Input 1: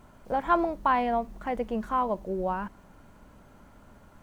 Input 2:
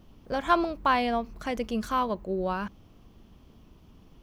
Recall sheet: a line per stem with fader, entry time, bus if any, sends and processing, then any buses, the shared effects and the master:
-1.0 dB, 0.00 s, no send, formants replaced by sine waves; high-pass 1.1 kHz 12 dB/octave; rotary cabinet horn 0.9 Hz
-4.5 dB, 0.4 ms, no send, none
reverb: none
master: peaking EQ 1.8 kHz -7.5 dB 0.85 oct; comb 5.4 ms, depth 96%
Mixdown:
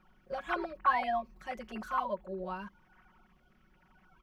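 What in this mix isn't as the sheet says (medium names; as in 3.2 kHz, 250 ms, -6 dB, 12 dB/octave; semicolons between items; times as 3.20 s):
stem 2 -4.5 dB -> -16.0 dB; master: missing peaking EQ 1.8 kHz -7.5 dB 0.85 oct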